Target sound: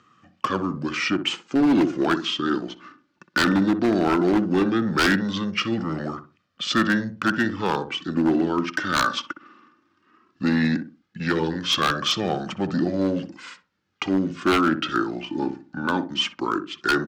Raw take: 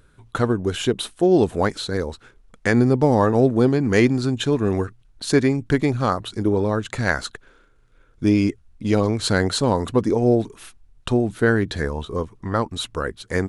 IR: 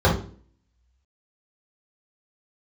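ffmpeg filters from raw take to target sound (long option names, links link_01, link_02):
-filter_complex "[0:a]bass=frequency=250:gain=8,treble=frequency=4000:gain=0,asetrate=34839,aresample=44100,flanger=delay=1.6:depth=1.8:regen=35:speed=0.16:shape=sinusoidal,acrossover=split=460|880[link_01][link_02][link_03];[link_01]asoftclip=type=tanh:threshold=-21.5dB[link_04];[link_02]acrusher=bits=6:mode=log:mix=0:aa=0.000001[link_05];[link_04][link_05][link_03]amix=inputs=3:normalize=0,highpass=frequency=190:width=0.5412,highpass=frequency=190:width=1.3066,equalizer=frequency=410:width_type=q:width=4:gain=-6,equalizer=frequency=650:width_type=q:width=4:gain=-9,equalizer=frequency=930:width_type=q:width=4:gain=-5,equalizer=frequency=1500:width_type=q:width=4:gain=8,lowpass=frequency=5500:width=0.5412,lowpass=frequency=5500:width=1.3066,asplit=2[link_06][link_07];[link_07]adelay=62,lowpass=frequency=850:poles=1,volume=-8dB,asplit=2[link_08][link_09];[link_09]adelay=62,lowpass=frequency=850:poles=1,volume=0.31,asplit=2[link_10][link_11];[link_11]adelay=62,lowpass=frequency=850:poles=1,volume=0.31,asplit=2[link_12][link_13];[link_13]adelay=62,lowpass=frequency=850:poles=1,volume=0.31[link_14];[link_06][link_08][link_10][link_12][link_14]amix=inputs=5:normalize=0,aeval=exprs='0.106*(abs(mod(val(0)/0.106+3,4)-2)-1)':channel_layout=same,volume=7dB"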